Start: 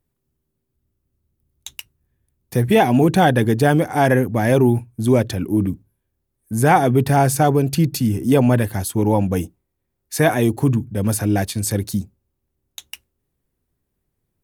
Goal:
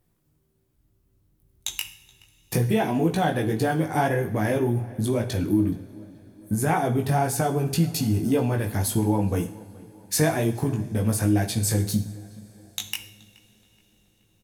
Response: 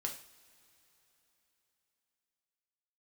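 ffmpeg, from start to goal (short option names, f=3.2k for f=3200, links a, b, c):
-filter_complex "[0:a]acompressor=threshold=-28dB:ratio=5,flanger=delay=17.5:depth=2.2:speed=1.9,asplit=2[a][b];[b]adelay=425,lowpass=f=2.7k:p=1,volume=-22dB,asplit=2[c][d];[d]adelay=425,lowpass=f=2.7k:p=1,volume=0.5,asplit=2[e][f];[f]adelay=425,lowpass=f=2.7k:p=1,volume=0.5[g];[a][c][e][g]amix=inputs=4:normalize=0,asplit=2[h][i];[1:a]atrim=start_sample=2205,asetrate=32634,aresample=44100[j];[i][j]afir=irnorm=-1:irlink=0,volume=-2.5dB[k];[h][k]amix=inputs=2:normalize=0,volume=4.5dB"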